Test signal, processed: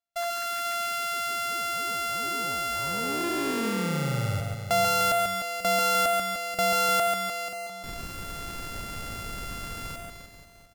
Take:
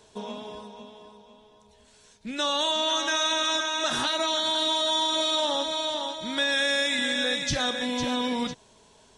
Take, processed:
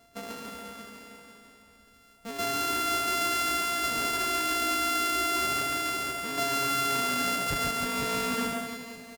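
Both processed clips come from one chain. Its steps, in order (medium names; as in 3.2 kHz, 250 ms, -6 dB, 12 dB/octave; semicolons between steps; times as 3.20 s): sorted samples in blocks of 64 samples; modulation noise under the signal 32 dB; reverse bouncing-ball echo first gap 140 ms, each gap 1.15×, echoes 5; trim -3.5 dB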